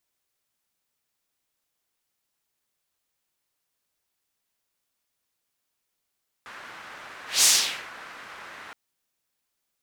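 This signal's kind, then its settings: whoosh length 2.27 s, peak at 0.98 s, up 0.19 s, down 0.49 s, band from 1.5 kHz, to 6.8 kHz, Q 1.5, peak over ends 26 dB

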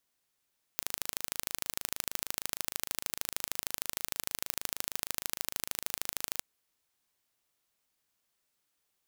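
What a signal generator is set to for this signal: pulse train 26.4 per s, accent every 2, -4 dBFS 5.63 s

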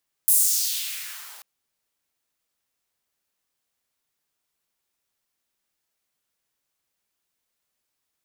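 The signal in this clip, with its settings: swept filtered noise white, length 1.14 s highpass, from 11 kHz, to 760 Hz, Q 1.8, exponential, gain ramp -28.5 dB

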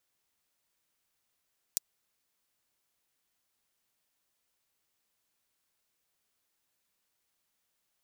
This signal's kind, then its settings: closed hi-hat, high-pass 5.5 kHz, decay 0.02 s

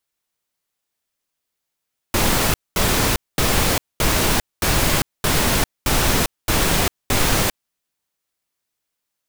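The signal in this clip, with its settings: noise bursts pink, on 0.40 s, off 0.22 s, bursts 9, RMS -17.5 dBFS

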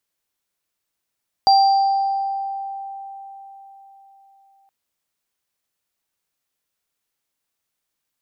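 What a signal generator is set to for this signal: sine partials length 3.22 s, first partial 785 Hz, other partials 4.73 kHz, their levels -7.5 dB, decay 4.23 s, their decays 1.27 s, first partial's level -9.5 dB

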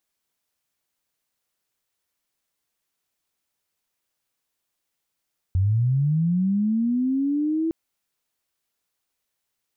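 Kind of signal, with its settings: sweep linear 89 Hz -> 330 Hz -17 dBFS -> -20.5 dBFS 2.16 s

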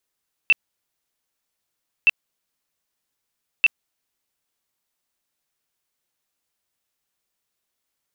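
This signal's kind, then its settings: tone bursts 2.67 kHz, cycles 68, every 1.57 s, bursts 3, -10 dBFS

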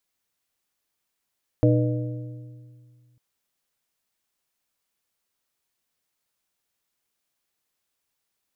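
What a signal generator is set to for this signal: metal hit plate, lowest mode 122 Hz, modes 4, decay 2.16 s, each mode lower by 2.5 dB, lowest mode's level -16 dB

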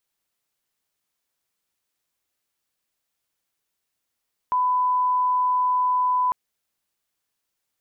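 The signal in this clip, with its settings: line-up tone -18 dBFS 1.80 s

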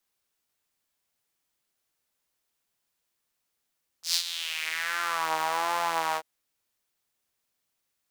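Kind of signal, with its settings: synth patch with vibrato E3, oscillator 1 saw, noise -28 dB, filter highpass, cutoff 660 Hz, Q 3.1, filter envelope 3 oct, filter decay 1.29 s, filter sustain 15%, attack 116 ms, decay 0.08 s, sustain -11.5 dB, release 0.06 s, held 2.13 s, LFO 1.3 Hz, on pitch 69 cents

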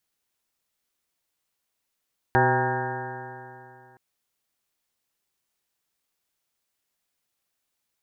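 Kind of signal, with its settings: stretched partials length 1.62 s, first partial 124 Hz, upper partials -7/0/-5/-8.5/3/-0.5/-13.5/-15/-8/-1/-8 dB, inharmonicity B 0.0034, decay 2.66 s, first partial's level -23 dB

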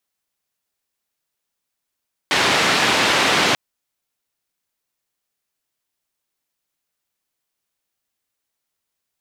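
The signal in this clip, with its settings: noise band 140–3200 Hz, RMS -17 dBFS 1.24 s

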